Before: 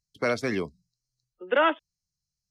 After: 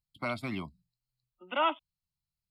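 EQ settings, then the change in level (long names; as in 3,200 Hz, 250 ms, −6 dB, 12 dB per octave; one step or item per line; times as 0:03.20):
phaser with its sweep stopped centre 1,700 Hz, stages 6
−2.0 dB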